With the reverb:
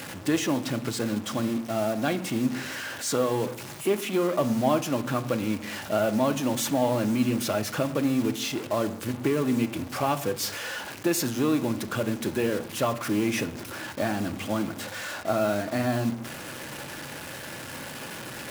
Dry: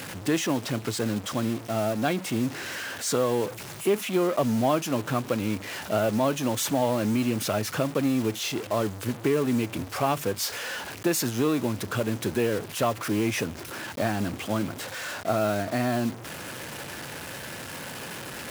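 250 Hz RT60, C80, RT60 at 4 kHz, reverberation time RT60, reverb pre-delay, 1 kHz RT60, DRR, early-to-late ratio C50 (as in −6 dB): 0.80 s, 18.0 dB, 0.40 s, 0.60 s, 3 ms, 0.55 s, 9.0 dB, 14.5 dB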